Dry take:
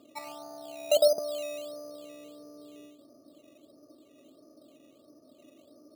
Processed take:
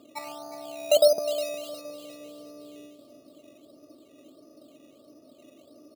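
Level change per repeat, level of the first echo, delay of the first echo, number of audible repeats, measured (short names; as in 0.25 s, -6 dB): -7.5 dB, -12.5 dB, 0.36 s, 3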